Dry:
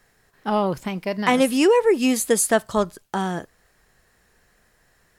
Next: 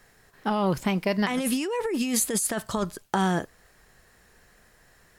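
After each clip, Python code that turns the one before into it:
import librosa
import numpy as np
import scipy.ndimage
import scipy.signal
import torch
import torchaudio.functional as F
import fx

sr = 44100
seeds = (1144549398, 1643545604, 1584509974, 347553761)

y = fx.dynamic_eq(x, sr, hz=550.0, q=0.77, threshold_db=-26.0, ratio=4.0, max_db=-5)
y = fx.over_compress(y, sr, threshold_db=-25.0, ratio=-1.0)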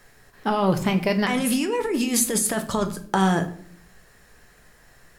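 y = fx.room_shoebox(x, sr, seeds[0], volume_m3=70.0, walls='mixed', distance_m=0.33)
y = y * librosa.db_to_amplitude(3.0)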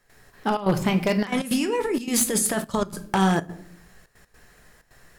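y = np.minimum(x, 2.0 * 10.0 ** (-14.5 / 20.0) - x)
y = fx.step_gate(y, sr, bpm=159, pattern='.xxxxx.xxxxxx.x', floor_db=-12.0, edge_ms=4.5)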